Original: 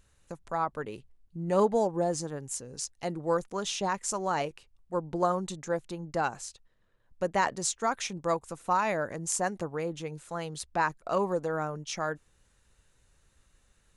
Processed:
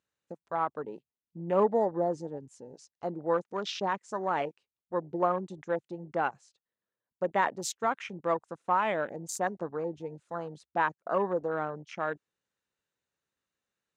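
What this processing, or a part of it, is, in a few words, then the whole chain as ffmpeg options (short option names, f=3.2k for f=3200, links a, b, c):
over-cleaned archive recording: -af "highpass=200,lowpass=6.1k,afwtdn=0.0112"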